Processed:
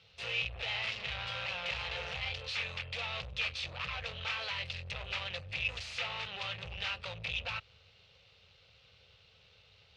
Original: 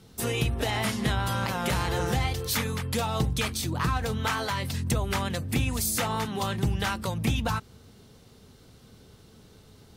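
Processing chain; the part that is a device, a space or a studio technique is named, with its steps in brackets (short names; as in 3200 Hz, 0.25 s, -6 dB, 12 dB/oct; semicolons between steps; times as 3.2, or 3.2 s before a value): scooped metal amplifier (tube stage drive 34 dB, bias 0.8; speaker cabinet 81–4100 Hz, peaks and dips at 130 Hz -4 dB, 220 Hz -9 dB, 530 Hz +10 dB, 1000 Hz -4 dB, 1600 Hz -4 dB, 2600 Hz +9 dB; passive tone stack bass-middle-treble 10-0-10); gain +6.5 dB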